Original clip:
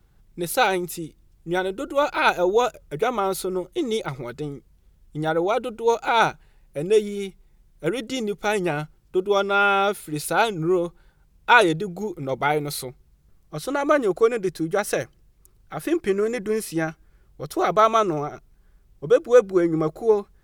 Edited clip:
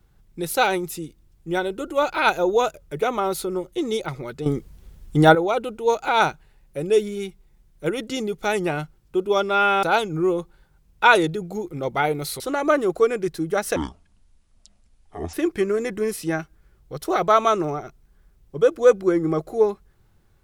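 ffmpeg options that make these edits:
ffmpeg -i in.wav -filter_complex "[0:a]asplit=7[link_01][link_02][link_03][link_04][link_05][link_06][link_07];[link_01]atrim=end=4.462[link_08];[link_02]atrim=start=4.458:end=5.352,asetpts=PTS-STARTPTS,volume=11.5dB[link_09];[link_03]atrim=start=5.348:end=9.832[link_10];[link_04]atrim=start=10.288:end=12.862[link_11];[link_05]atrim=start=13.608:end=14.974[link_12];[link_06]atrim=start=14.97:end=15.82,asetpts=PTS-STARTPTS,asetrate=23814,aresample=44100[link_13];[link_07]atrim=start=15.816[link_14];[link_08][link_09]acrossfade=duration=0.004:curve1=hsin:curve2=hsin[link_15];[link_15][link_10]acrossfade=duration=0.004:curve1=hsin:curve2=hsin[link_16];[link_16][link_11]acrossfade=duration=0.004:curve1=hsin:curve2=hsin[link_17];[link_17][link_12]acrossfade=duration=0.004:curve1=hsin:curve2=hsin[link_18];[link_18][link_13]acrossfade=duration=0.004:curve1=hsin:curve2=hsin[link_19];[link_19][link_14]acrossfade=duration=0.004:curve1=hsin:curve2=hsin" out.wav

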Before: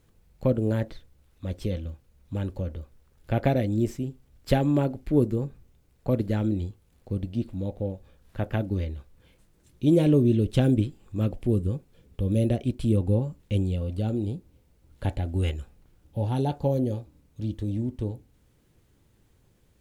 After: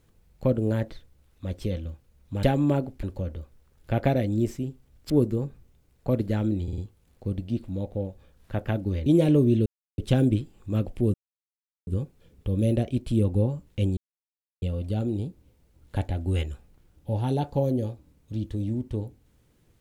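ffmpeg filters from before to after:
ffmpeg -i in.wav -filter_complex "[0:a]asplit=11[link_01][link_02][link_03][link_04][link_05][link_06][link_07][link_08][link_09][link_10][link_11];[link_01]atrim=end=2.432[link_12];[link_02]atrim=start=4.498:end=5.102[link_13];[link_03]atrim=start=2.428:end=4.502[link_14];[link_04]atrim=start=5.098:end=6.682[link_15];[link_05]atrim=start=6.628:end=6.682[link_16];[link_06]atrim=start=6.628:end=6.682[link_17];[link_07]atrim=start=6.628:end=8.912[link_18];[link_08]atrim=start=9.838:end=10.44,asetpts=PTS-STARTPTS,afade=type=out:start_time=0.598:duration=0.004:curve=hsin,apad=pad_dur=0.32[link_19];[link_09]atrim=start=10.44:end=11.6,asetpts=PTS-STARTPTS,afade=type=in:duration=0.004:curve=hsin,afade=type=out:start_time=1.156:duration=0.004:curve=hsin,apad=pad_dur=0.73[link_20];[link_10]atrim=start=11.6:end=13.7,asetpts=PTS-STARTPTS,afade=type=in:duration=0.004:curve=hsin,afade=type=out:start_time=2.096:duration=0.004:curve=hsin,apad=pad_dur=0.65[link_21];[link_11]atrim=start=13.7,asetpts=PTS-STARTPTS,afade=type=in:duration=0.004:curve=hsin[link_22];[link_12][link_13]acrossfade=duration=0.004:curve1=hsin:curve2=hsin[link_23];[link_23][link_14]acrossfade=duration=0.004:curve1=hsin:curve2=hsin[link_24];[link_24][link_15]acrossfade=duration=0.004:curve1=hsin:curve2=hsin[link_25];[link_25][link_16]acrossfade=duration=0.004:curve1=hsin:curve2=hsin[link_26];[link_26][link_17]acrossfade=duration=0.004:curve1=hsin:curve2=hsin[link_27];[link_27][link_18]acrossfade=duration=0.004:curve1=hsin:curve2=hsin[link_28];[link_19][link_20][link_21][link_22]concat=n=4:v=0:a=1[link_29];[link_28][link_29]acrossfade=duration=0.004:curve1=hsin:curve2=hsin" out.wav

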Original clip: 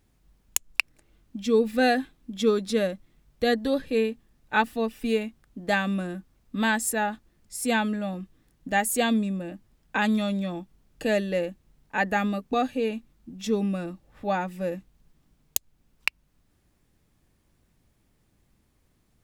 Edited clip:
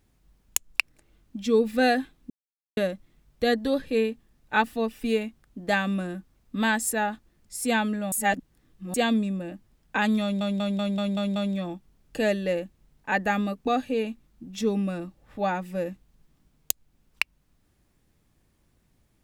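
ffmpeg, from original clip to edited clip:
ffmpeg -i in.wav -filter_complex "[0:a]asplit=11[link_01][link_02][link_03][link_04][link_05][link_06][link_07][link_08][link_09][link_10][link_11];[link_01]atrim=end=2.3,asetpts=PTS-STARTPTS,afade=type=out:start_time=2.296:duration=0.004:curve=hsin[link_12];[link_02]atrim=start=2.3:end=2.77,asetpts=PTS-STARTPTS,volume=0[link_13];[link_03]atrim=start=2.77:end=8.122,asetpts=PTS-STARTPTS,afade=type=in:duration=0.004:curve=hsin[link_14];[link_04]atrim=start=8.118:end=8.942,asetpts=PTS-STARTPTS,areverse[link_15];[link_05]atrim=start=8.938:end=10.412[link_16];[link_06]atrim=start=10.218:end=10.412[link_17];[link_07]atrim=start=10.218:end=10.412[link_18];[link_08]atrim=start=10.218:end=10.412[link_19];[link_09]atrim=start=10.218:end=10.412[link_20];[link_10]atrim=start=10.218:end=10.412[link_21];[link_11]atrim=start=10.218[link_22];[link_12][link_13][link_14]concat=n=3:v=0:a=1[link_23];[link_23][link_15]acrossfade=duration=0.004:curve1=hsin:curve2=hsin[link_24];[link_24][link_16]acrossfade=duration=0.004:curve1=hsin:curve2=hsin[link_25];[link_25][link_17]acrossfade=duration=0.004:curve1=hsin:curve2=hsin[link_26];[link_26][link_18]acrossfade=duration=0.004:curve1=hsin:curve2=hsin[link_27];[link_27][link_19]acrossfade=duration=0.004:curve1=hsin:curve2=hsin[link_28];[link_28][link_20]acrossfade=duration=0.004:curve1=hsin:curve2=hsin[link_29];[link_29][link_21]acrossfade=duration=0.004:curve1=hsin:curve2=hsin[link_30];[link_30][link_22]acrossfade=duration=0.004:curve1=hsin:curve2=hsin" out.wav

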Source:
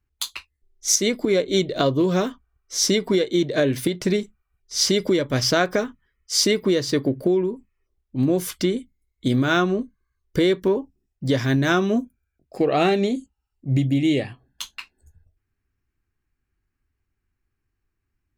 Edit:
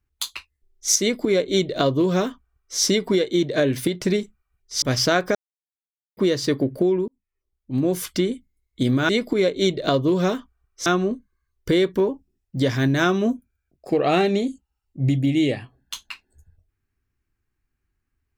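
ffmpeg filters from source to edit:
ffmpeg -i in.wav -filter_complex "[0:a]asplit=7[link_01][link_02][link_03][link_04][link_05][link_06][link_07];[link_01]atrim=end=4.822[link_08];[link_02]atrim=start=5.268:end=5.8,asetpts=PTS-STARTPTS,afade=type=out:start_time=0.528:duration=0.004:curve=hsin[link_09];[link_03]atrim=start=5.8:end=6.62,asetpts=PTS-STARTPTS,volume=0[link_10];[link_04]atrim=start=6.62:end=7.53,asetpts=PTS-STARTPTS,afade=type=in:duration=0.004:curve=hsin,afade=type=out:start_time=0.906:duration=0.004:curve=hsin[link_11];[link_05]atrim=start=7.53:end=9.542,asetpts=PTS-STARTPTS,afade=type=in:duration=0.88[link_12];[link_06]atrim=start=1.008:end=2.782[link_13];[link_07]atrim=start=9.538[link_14];[link_09][link_10][link_11][link_12]concat=n=4:v=0:a=1[link_15];[link_08][link_15]acrossfade=duration=0.004:curve1=hsin:curve2=hsin[link_16];[link_16][link_13]acrossfade=duration=0.004:curve1=hsin:curve2=hsin[link_17];[link_17][link_14]acrossfade=duration=0.004:curve1=hsin:curve2=hsin" out.wav

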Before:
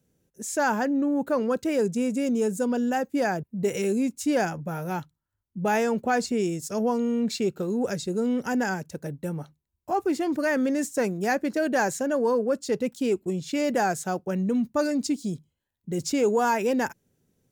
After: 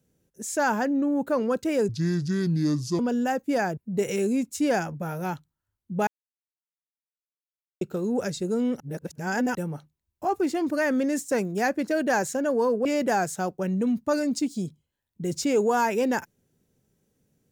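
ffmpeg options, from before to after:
ffmpeg -i in.wav -filter_complex "[0:a]asplit=8[link_01][link_02][link_03][link_04][link_05][link_06][link_07][link_08];[link_01]atrim=end=1.894[link_09];[link_02]atrim=start=1.89:end=2.65,asetpts=PTS-STARTPTS,asetrate=30429,aresample=44100[link_10];[link_03]atrim=start=2.646:end=5.73,asetpts=PTS-STARTPTS,afade=type=out:start_time=3.08:duration=0.004:curve=hsin[link_11];[link_04]atrim=start=5.73:end=7.47,asetpts=PTS-STARTPTS,volume=0[link_12];[link_05]atrim=start=7.47:end=8.462,asetpts=PTS-STARTPTS,afade=type=in:duration=0.004:curve=hsin[link_13];[link_06]atrim=start=8.458:end=9.212,asetpts=PTS-STARTPTS,areverse[link_14];[link_07]atrim=start=9.208:end=12.512[link_15];[link_08]atrim=start=13.528[link_16];[link_09][link_10]acrossfade=duration=0.004:curve1=hsin:curve2=hsin[link_17];[link_11][link_12][link_13]concat=n=3:v=0:a=1[link_18];[link_17][link_18]acrossfade=duration=0.004:curve1=hsin:curve2=hsin[link_19];[link_19][link_14]acrossfade=duration=0.004:curve1=hsin:curve2=hsin[link_20];[link_20][link_15]acrossfade=duration=0.004:curve1=hsin:curve2=hsin[link_21];[link_21][link_16]acrossfade=duration=0.004:curve1=hsin:curve2=hsin" out.wav

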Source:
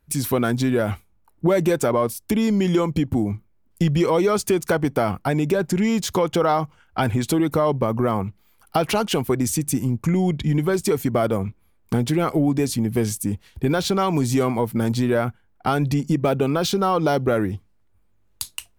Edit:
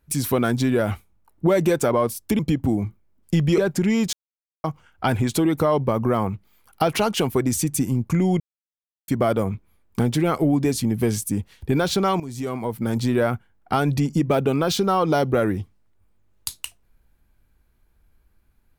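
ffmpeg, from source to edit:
ffmpeg -i in.wav -filter_complex "[0:a]asplit=8[link_01][link_02][link_03][link_04][link_05][link_06][link_07][link_08];[link_01]atrim=end=2.392[link_09];[link_02]atrim=start=2.868:end=4.062[link_10];[link_03]atrim=start=5.518:end=6.07,asetpts=PTS-STARTPTS,afade=type=out:start_time=0.548:duration=0.004:curve=hsin[link_11];[link_04]atrim=start=6.07:end=6.58,asetpts=PTS-STARTPTS,volume=0[link_12];[link_05]atrim=start=6.58:end=10.34,asetpts=PTS-STARTPTS,afade=type=in:duration=0.004:curve=hsin,afade=type=out:start_time=3.756:duration=0.004:curve=hsin[link_13];[link_06]atrim=start=10.34:end=11.02,asetpts=PTS-STARTPTS,volume=0[link_14];[link_07]atrim=start=11.02:end=14.14,asetpts=PTS-STARTPTS,afade=type=in:duration=0.004:curve=hsin,afade=type=out:start_time=3.116:duration=0.004:curve=hsin:silence=0.158489[link_15];[link_08]atrim=start=14.14,asetpts=PTS-STARTPTS,afade=type=in:duration=0.96:silence=0.158489[link_16];[link_09][link_10]acrossfade=duration=0.004:curve1=hsin:curve2=hsin[link_17];[link_11][link_12][link_13][link_14][link_15][link_16]concat=n=6:v=0:a=1[link_18];[link_17][link_18]acrossfade=duration=0.004:curve1=hsin:curve2=hsin" out.wav

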